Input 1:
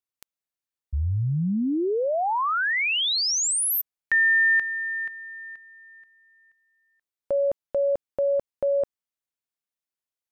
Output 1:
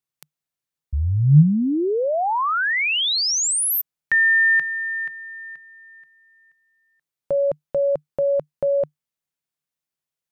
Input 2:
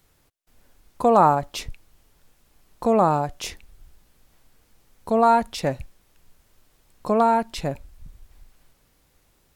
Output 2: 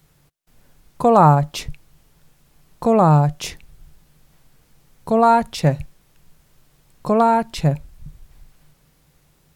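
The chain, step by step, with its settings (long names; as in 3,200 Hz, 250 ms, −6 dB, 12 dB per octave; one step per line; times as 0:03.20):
parametric band 150 Hz +13.5 dB 0.35 octaves
level +3 dB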